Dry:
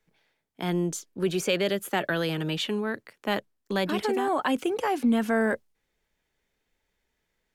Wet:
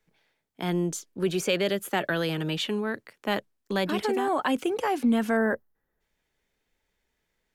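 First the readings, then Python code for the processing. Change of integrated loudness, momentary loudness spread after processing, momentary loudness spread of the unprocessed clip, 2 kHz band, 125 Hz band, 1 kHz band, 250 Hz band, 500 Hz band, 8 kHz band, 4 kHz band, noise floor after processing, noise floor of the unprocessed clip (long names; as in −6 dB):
0.0 dB, 7 LU, 7 LU, 0.0 dB, 0.0 dB, 0.0 dB, 0.0 dB, 0.0 dB, 0.0 dB, 0.0 dB, −79 dBFS, −79 dBFS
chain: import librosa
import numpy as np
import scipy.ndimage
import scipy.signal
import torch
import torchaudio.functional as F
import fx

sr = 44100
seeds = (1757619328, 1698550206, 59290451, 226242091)

y = fx.spec_box(x, sr, start_s=5.37, length_s=0.64, low_hz=2000.0, high_hz=11000.0, gain_db=-14)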